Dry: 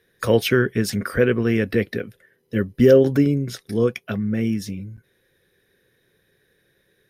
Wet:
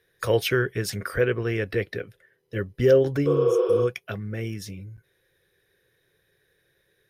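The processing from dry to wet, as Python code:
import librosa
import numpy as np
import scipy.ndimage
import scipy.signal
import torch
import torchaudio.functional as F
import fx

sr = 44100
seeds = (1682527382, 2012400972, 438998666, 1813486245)

y = fx.peak_eq(x, sr, hz=230.0, db=-13.5, octaves=0.52)
y = fx.spec_repair(y, sr, seeds[0], start_s=3.29, length_s=0.51, low_hz=350.0, high_hz=5400.0, source='after')
y = fx.high_shelf(y, sr, hz=9300.0, db=-7.0, at=(1.21, 3.74))
y = F.gain(torch.from_numpy(y), -3.0).numpy()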